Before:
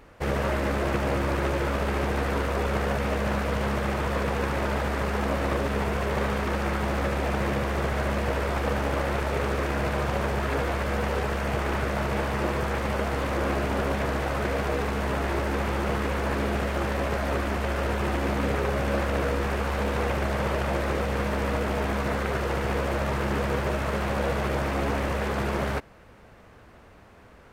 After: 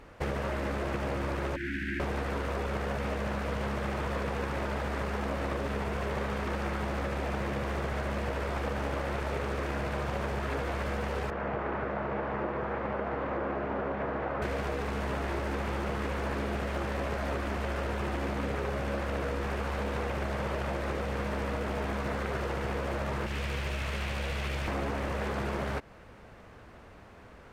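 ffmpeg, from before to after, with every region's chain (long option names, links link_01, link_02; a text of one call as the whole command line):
ffmpeg -i in.wav -filter_complex "[0:a]asettb=1/sr,asplit=3[link_01][link_02][link_03];[link_01]atrim=end=1.564[link_04];[link_02]atrim=start=1.56:end=2,asetpts=PTS-STARTPTS,afade=type=in:duration=0.004:curve=qsin,afade=type=out:start_time=0.436:duration=0.004:curve=qsin,acrossover=split=300 2100:gain=0.178 1 0.141[link_05][link_06][link_07];[link_05][link_06][link_07]amix=inputs=3:normalize=0,acontrast=55,asuperstop=centerf=730:order=20:qfactor=0.6[link_08];[link_03]atrim=start=1.996[link_09];[link_04][link_08]acrossfade=duration=0.004:curve1=hsin:curve2=qsin[link_10];[link_10][link_09]acrossfade=duration=0.004:curve1=qsin:curve2=hsin,asettb=1/sr,asplit=3[link_11][link_12][link_13];[link_11]atrim=end=11.304[link_14];[link_12]atrim=start=11.3:end=14.42,asetpts=PTS-STARTPTS,afade=type=in:duration=0.004:curve=qsin,afade=type=out:start_time=3.116:duration=0.004:curve=qsin,lowpass=1600,lowshelf=frequency=130:gain=-12[link_15];[link_13]atrim=start=14.416[link_16];[link_14][link_15]acrossfade=duration=0.004:curve1=hsin:curve2=qsin[link_17];[link_17][link_16]acrossfade=duration=0.004:curve1=qsin:curve2=hsin,asettb=1/sr,asplit=3[link_18][link_19][link_20];[link_18]atrim=end=23.264[link_21];[link_19]atrim=start=23.26:end=24.68,asetpts=PTS-STARTPTS,afade=type=in:duration=0.004:curve=qsin,afade=type=out:start_time=1.416:duration=0.004:curve=qsin,acrossover=split=120|3000[link_22][link_23][link_24];[link_23]acompressor=threshold=-51dB:ratio=1.5:attack=3.2:release=140:knee=2.83:detection=peak[link_25];[link_22][link_25][link_24]amix=inputs=3:normalize=0,equalizer=frequency=2500:width=1.1:gain=8.5[link_26];[link_20]atrim=start=24.676[link_27];[link_21][link_26]acrossfade=duration=0.004:curve1=hsin:curve2=qsin[link_28];[link_28][link_27]acrossfade=duration=0.004:curve1=qsin:curve2=hsin,highshelf=frequency=11000:gain=-7.5,acompressor=threshold=-29dB:ratio=6" out.wav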